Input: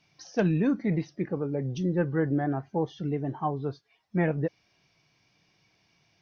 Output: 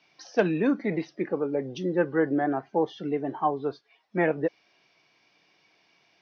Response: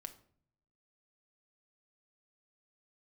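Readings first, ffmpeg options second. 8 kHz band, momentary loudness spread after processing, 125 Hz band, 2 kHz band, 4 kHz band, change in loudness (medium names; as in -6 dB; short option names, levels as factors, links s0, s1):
no reading, 7 LU, -8.0 dB, +5.0 dB, +3.5 dB, +1.5 dB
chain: -filter_complex "[0:a]acrossover=split=250 5600:gain=0.1 1 0.0794[s0][s1][s2];[s0][s1][s2]amix=inputs=3:normalize=0,volume=1.78"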